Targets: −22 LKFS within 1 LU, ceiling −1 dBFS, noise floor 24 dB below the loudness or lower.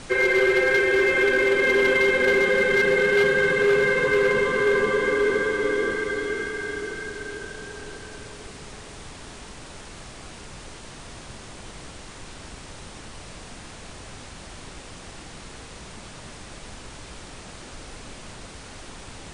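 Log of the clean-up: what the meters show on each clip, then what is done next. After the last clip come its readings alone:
share of clipped samples 0.9%; peaks flattened at −14.0 dBFS; background noise floor −42 dBFS; target noise floor −45 dBFS; integrated loudness −20.5 LKFS; sample peak −14.0 dBFS; target loudness −22.0 LKFS
→ clipped peaks rebuilt −14 dBFS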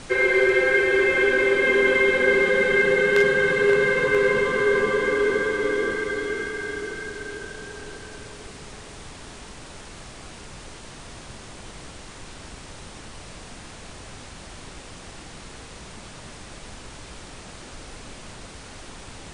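share of clipped samples 0.0%; background noise floor −42 dBFS; target noise floor −44 dBFS
→ noise reduction from a noise print 6 dB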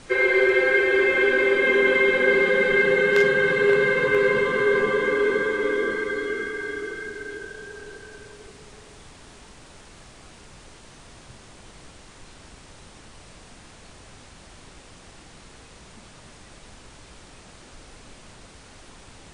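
background noise floor −48 dBFS; integrated loudness −20.0 LKFS; sample peak −5.0 dBFS; target loudness −22.0 LKFS
→ level −2 dB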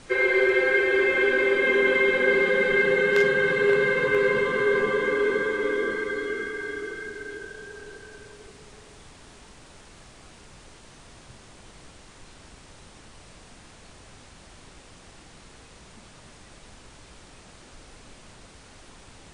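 integrated loudness −22.0 LKFS; sample peak −7.0 dBFS; background noise floor −50 dBFS

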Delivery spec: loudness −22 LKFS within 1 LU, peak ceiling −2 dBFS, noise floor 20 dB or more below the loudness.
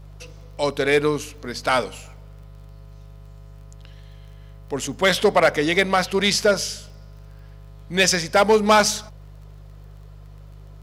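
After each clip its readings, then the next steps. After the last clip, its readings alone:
crackle rate 25 per second; mains hum 50 Hz; hum harmonics up to 150 Hz; level of the hum −39 dBFS; integrated loudness −20.0 LKFS; sample peak −6.0 dBFS; target loudness −22.0 LKFS
→ click removal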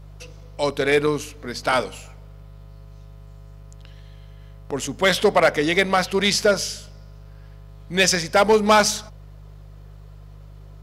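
crackle rate 0.18 per second; mains hum 50 Hz; hum harmonics up to 150 Hz; level of the hum −40 dBFS
→ hum removal 50 Hz, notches 3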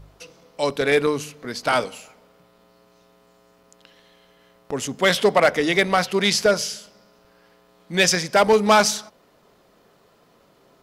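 mains hum none found; integrated loudness −20.0 LKFS; sample peak −6.0 dBFS; target loudness −22.0 LKFS
→ level −2 dB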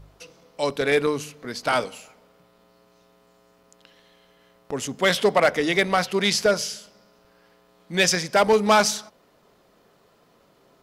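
integrated loudness −22.0 LKFS; sample peak −8.0 dBFS; background noise floor −60 dBFS

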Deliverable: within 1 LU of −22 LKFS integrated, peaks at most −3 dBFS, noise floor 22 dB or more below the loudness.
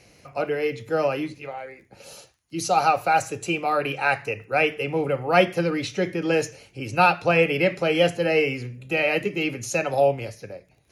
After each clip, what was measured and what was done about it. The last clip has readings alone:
crackle rate 24 per second; integrated loudness −23.0 LKFS; sample peak −4.5 dBFS; target loudness −22.0 LKFS
→ click removal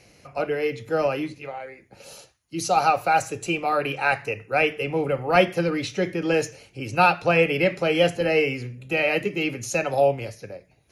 crackle rate 0 per second; integrated loudness −23.0 LKFS; sample peak −4.5 dBFS; target loudness −22.0 LKFS
→ level +1 dB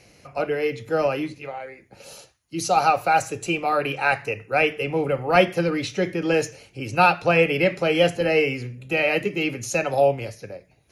integrated loudness −22.0 LKFS; sample peak −3.5 dBFS; background noise floor −58 dBFS

